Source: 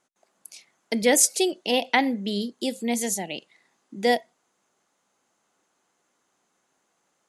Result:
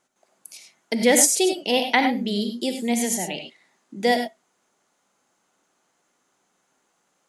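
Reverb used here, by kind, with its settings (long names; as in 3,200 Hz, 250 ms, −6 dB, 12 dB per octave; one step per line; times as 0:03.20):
reverb whose tail is shaped and stops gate 120 ms rising, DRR 5 dB
level +1.5 dB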